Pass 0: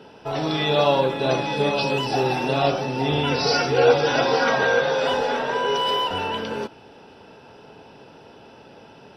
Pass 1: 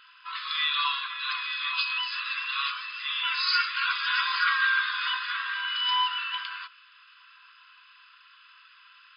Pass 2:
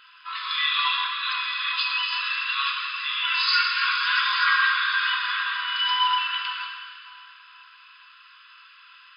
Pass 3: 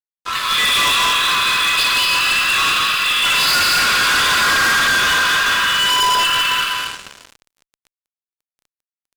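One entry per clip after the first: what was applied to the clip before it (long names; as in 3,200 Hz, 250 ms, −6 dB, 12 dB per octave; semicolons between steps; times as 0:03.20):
brick-wall band-pass 1,000–5,100 Hz
dense smooth reverb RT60 2.4 s, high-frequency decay 0.9×, DRR 1 dB; level +2 dB
loudspeakers that aren't time-aligned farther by 60 metres −5 dB, 78 metres −5 dB; tube saturation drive 15 dB, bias 0.75; fuzz pedal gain 33 dB, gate −42 dBFS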